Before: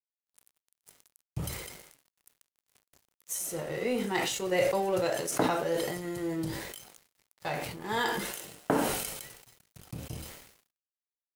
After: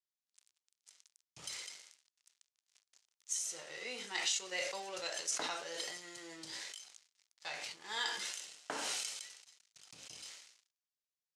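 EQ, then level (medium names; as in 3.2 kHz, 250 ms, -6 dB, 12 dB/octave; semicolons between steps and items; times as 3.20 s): low-pass 6.5 kHz 24 dB/octave; differentiator; +5.5 dB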